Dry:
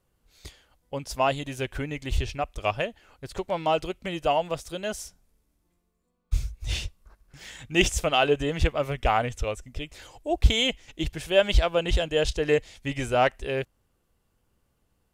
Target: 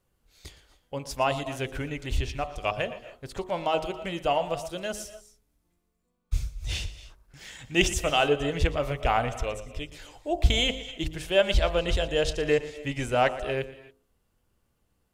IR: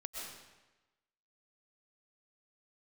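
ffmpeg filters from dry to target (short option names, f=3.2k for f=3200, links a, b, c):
-filter_complex "[0:a]bandreject=f=52.47:t=h:w=4,bandreject=f=104.94:t=h:w=4,bandreject=f=157.41:t=h:w=4,bandreject=f=209.88:t=h:w=4,bandreject=f=262.35:t=h:w=4,bandreject=f=314.82:t=h:w=4,bandreject=f=367.29:t=h:w=4,bandreject=f=419.76:t=h:w=4,bandreject=f=472.23:t=h:w=4,bandreject=f=524.7:t=h:w=4,bandreject=f=577.17:t=h:w=4,bandreject=f=629.64:t=h:w=4,bandreject=f=682.11:t=h:w=4,bandreject=f=734.58:t=h:w=4,bandreject=f=787.05:t=h:w=4,bandreject=f=839.52:t=h:w=4,bandreject=f=891.99:t=h:w=4,bandreject=f=944.46:t=h:w=4,bandreject=f=996.93:t=h:w=4,bandreject=f=1.0494k:t=h:w=4,bandreject=f=1.10187k:t=h:w=4,bandreject=f=1.15434k:t=h:w=4,bandreject=f=1.20681k:t=h:w=4,bandreject=f=1.25928k:t=h:w=4,bandreject=f=1.31175k:t=h:w=4,asplit=2[a][b];[1:a]atrim=start_sample=2205,afade=t=out:st=0.22:d=0.01,atrim=end_sample=10143,adelay=117[c];[b][c]afir=irnorm=-1:irlink=0,volume=-11dB[d];[a][d]amix=inputs=2:normalize=0,volume=-1dB"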